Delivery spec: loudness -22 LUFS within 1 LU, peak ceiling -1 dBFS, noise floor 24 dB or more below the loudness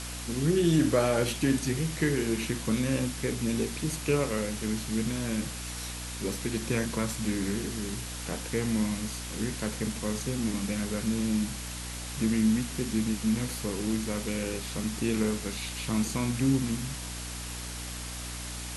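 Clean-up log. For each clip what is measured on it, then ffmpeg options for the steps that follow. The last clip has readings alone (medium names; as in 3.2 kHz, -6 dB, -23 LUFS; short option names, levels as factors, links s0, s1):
hum 60 Hz; highest harmonic 300 Hz; hum level -38 dBFS; noise floor -38 dBFS; noise floor target -54 dBFS; loudness -30.0 LUFS; peak level -12.0 dBFS; loudness target -22.0 LUFS
-> -af "bandreject=f=60:t=h:w=6,bandreject=f=120:t=h:w=6,bandreject=f=180:t=h:w=6,bandreject=f=240:t=h:w=6,bandreject=f=300:t=h:w=6"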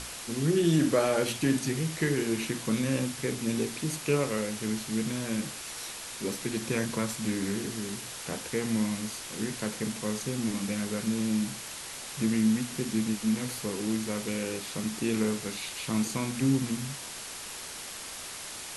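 hum not found; noise floor -41 dBFS; noise floor target -55 dBFS
-> -af "afftdn=nr=14:nf=-41"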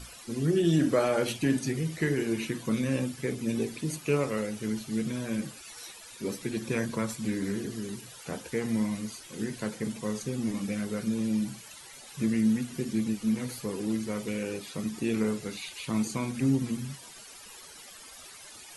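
noise floor -48 dBFS; noise floor target -55 dBFS
-> -af "afftdn=nr=7:nf=-48"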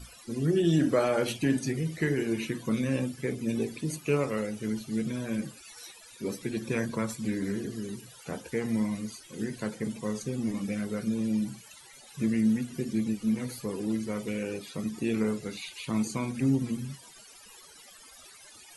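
noise floor -52 dBFS; noise floor target -55 dBFS
-> -af "afftdn=nr=6:nf=-52"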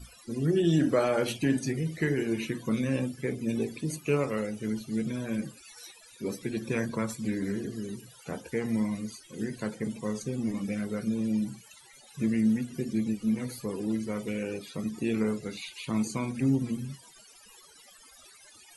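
noise floor -55 dBFS; loudness -31.0 LUFS; peak level -13.5 dBFS; loudness target -22.0 LUFS
-> -af "volume=2.82"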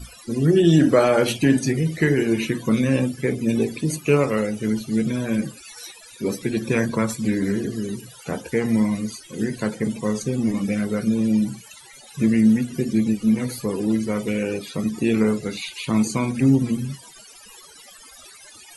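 loudness -22.0 LUFS; peak level -4.5 dBFS; noise floor -46 dBFS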